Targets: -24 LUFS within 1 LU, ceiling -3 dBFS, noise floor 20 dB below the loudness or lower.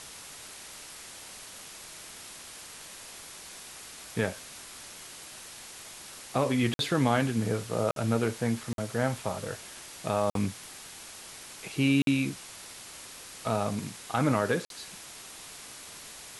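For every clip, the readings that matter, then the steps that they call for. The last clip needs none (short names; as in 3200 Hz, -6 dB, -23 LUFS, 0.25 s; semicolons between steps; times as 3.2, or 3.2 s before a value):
dropouts 6; longest dropout 52 ms; noise floor -46 dBFS; noise floor target -50 dBFS; loudness -30.0 LUFS; peak -12.5 dBFS; loudness target -24.0 LUFS
-> interpolate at 6.74/7.91/8.73/10.3/12.02/14.65, 52 ms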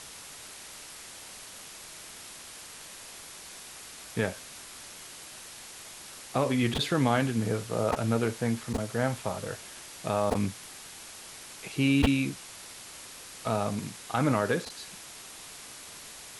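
dropouts 0; noise floor -46 dBFS; noise floor target -50 dBFS
-> noise print and reduce 6 dB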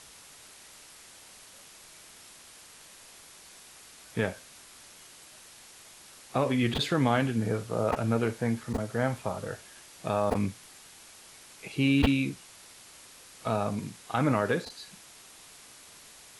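noise floor -52 dBFS; loudness -29.5 LUFS; peak -10.0 dBFS; loudness target -24.0 LUFS
-> gain +5.5 dB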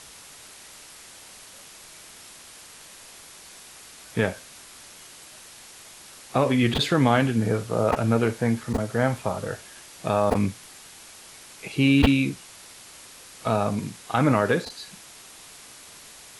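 loudness -24.0 LUFS; peak -4.5 dBFS; noise floor -47 dBFS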